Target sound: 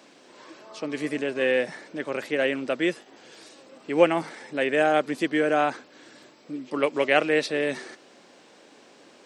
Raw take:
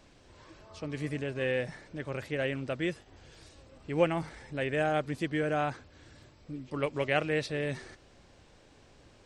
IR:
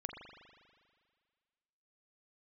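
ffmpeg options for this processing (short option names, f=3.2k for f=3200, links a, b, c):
-af "highpass=f=220:w=0.5412,highpass=f=220:w=1.3066,volume=8dB"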